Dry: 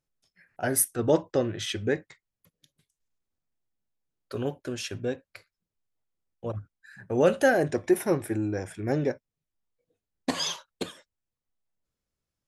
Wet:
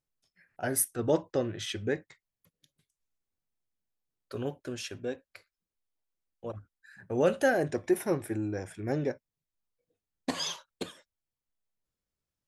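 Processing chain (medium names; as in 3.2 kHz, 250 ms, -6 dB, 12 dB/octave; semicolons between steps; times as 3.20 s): 4.91–7.03 s: peaking EQ 130 Hz -7 dB 1 oct; trim -4 dB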